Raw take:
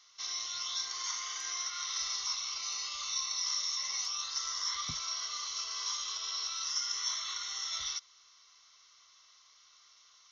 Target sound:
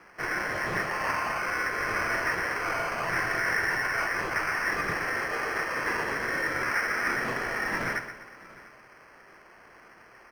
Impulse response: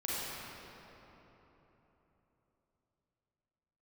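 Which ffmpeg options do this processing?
-filter_complex "[0:a]asplit=2[link_01][link_02];[link_02]adelay=699.7,volume=-14dB,highshelf=frequency=4000:gain=-15.7[link_03];[link_01][link_03]amix=inputs=2:normalize=0,acrusher=samples=12:mix=1:aa=0.000001,asplit=2[link_04][link_05];[link_05]highpass=frequency=720:poles=1,volume=9dB,asoftclip=type=tanh:threshold=-22dB[link_06];[link_04][link_06]amix=inputs=2:normalize=0,lowpass=frequency=1400:poles=1,volume=-6dB,asplit=2[link_07][link_08];[link_08]aecho=0:1:124|248|372|496|620:0.299|0.128|0.0552|0.0237|0.0102[link_09];[link_07][link_09]amix=inputs=2:normalize=0,volume=8dB"

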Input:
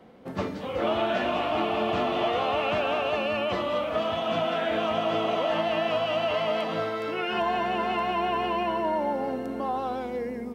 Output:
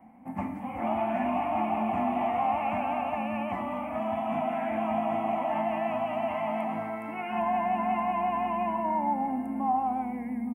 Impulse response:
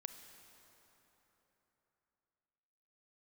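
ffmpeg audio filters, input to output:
-filter_complex "[0:a]firequalizer=gain_entry='entry(100,0);entry(150,-4);entry(240,10);entry(420,-19);entry(780,10);entry(1400,-9);entry(2200,3);entry(3800,-30);entry(9100,2)':delay=0.05:min_phase=1[link_01];[1:a]atrim=start_sample=2205,atrim=end_sample=6174[link_02];[link_01][link_02]afir=irnorm=-1:irlink=0"

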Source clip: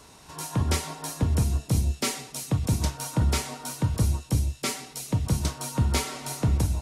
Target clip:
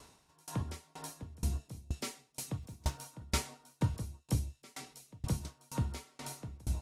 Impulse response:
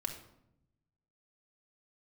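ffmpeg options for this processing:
-filter_complex "[0:a]asettb=1/sr,asplit=3[link_01][link_02][link_03];[link_01]atrim=end=2.624[link_04];[link_02]atrim=start=2.62:end=3.14,asetpts=PTS-STARTPTS,afade=type=in:duration=0.004:curve=qsin,afade=type=out:start_time=0.516:duration=0.004:curve=qsin,acrusher=bits=8:mode=log:mix=0:aa=0.000001[link_05];[link_03]atrim=start=3.136[link_06];[link_04][link_05]acrossfade=duration=0.004:curve1=hsin:curve2=qsin[link_07];[link_07][link_06]acrossfade=duration=0.004:curve1=qsin:curve2=hsin,aeval=exprs='val(0)*pow(10,-31*if(lt(mod(2.1*n/s,1),2*abs(2.1)/1000),1-mod(2.1*n/s,1)/(2*abs(2.1)/1000),(mod(2.1*n/s,1)-2*abs(2.1)/1000)/(1-2*abs(2.1)/1000))/20)':channel_layout=same,volume=-3.5dB"

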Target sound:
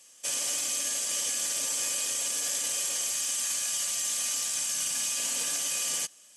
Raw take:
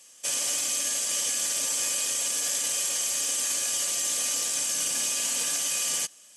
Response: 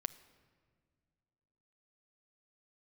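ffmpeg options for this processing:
-filter_complex "[0:a]asettb=1/sr,asplit=3[link_01][link_02][link_03];[link_01]atrim=end=3.114[link_04];[link_02]atrim=start=3.11:end=5.18,asetpts=PTS-STARTPTS,afade=type=in:duration=0.004:curve=qsin,afade=type=out:start_time=2.066:duration=0.004:curve=qsin,equalizer=frequency=400:width_type=o:width=0.79:gain=-13.5[link_05];[link_03]atrim=start=5.176[link_06];[link_04][link_05]acrossfade=duration=0.004:curve1=hsin:curve2=qsin[link_07];[link_07][link_06]acrossfade=duration=0.004:curve1=qsin:curve2=hsin,volume=-2.5dB"

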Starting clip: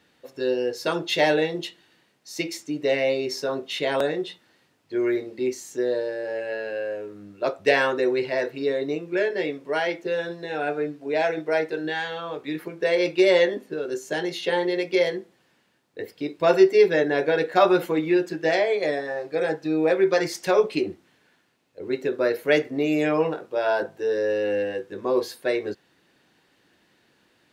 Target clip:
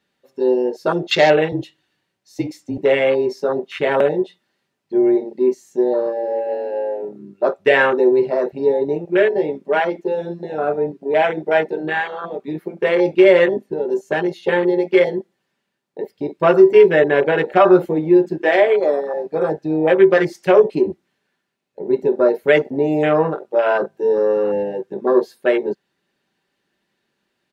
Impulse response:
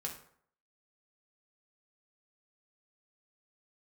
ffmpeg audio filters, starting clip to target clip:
-filter_complex "[0:a]asettb=1/sr,asplit=3[link_01][link_02][link_03];[link_01]atrim=end=18.384[link_04];[link_02]atrim=start=18.38:end=19.14,asetpts=PTS-STARTPTS,afade=type=in:duration=0.004:curve=qsin,afade=type=out:start_time=0.756:duration=0.004:curve=qsin,highpass=frequency=250:width=0.5412,highpass=frequency=250:width=1.3066[link_05];[link_03]atrim=start=19.136[link_06];[link_04][link_05]acrossfade=duration=0.004:curve1=hsin:curve2=qsin[link_07];[link_07][link_06]acrossfade=duration=0.004:curve1=qsin:curve2=hsin,afwtdn=0.0398,aecho=1:1:5.1:0.39,asettb=1/sr,asplit=3[link_08][link_09][link_10];[link_08]atrim=end=1.524[link_11];[link_09]atrim=start=1.52:end=2.78,asetpts=PTS-STARTPTS,afade=type=in:duration=0.004:curve=qsin,afade=type=out:start_time=1.256:duration=0.004:curve=qsin,afreqshift=-31[link_12];[link_10]atrim=start=2.776[link_13];[link_11][link_12]acrossfade=duration=0.004:curve1=hsin:curve2=qsin[link_14];[link_14][link_13]acrossfade=duration=0.004:curve1=qsin:curve2=hsin,alimiter=level_in=8dB:limit=-1dB:release=50:level=0:latency=1,volume=-1dB"

